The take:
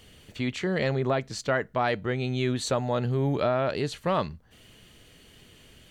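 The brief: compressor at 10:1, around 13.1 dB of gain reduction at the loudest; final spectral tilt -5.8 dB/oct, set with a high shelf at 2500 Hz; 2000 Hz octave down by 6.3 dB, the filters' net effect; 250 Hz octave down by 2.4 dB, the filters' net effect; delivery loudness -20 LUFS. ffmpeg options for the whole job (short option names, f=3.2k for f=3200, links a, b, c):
-af "equalizer=f=250:t=o:g=-3,equalizer=f=2k:t=o:g=-4.5,highshelf=f=2.5k:g=-8,acompressor=threshold=-36dB:ratio=10,volume=21dB"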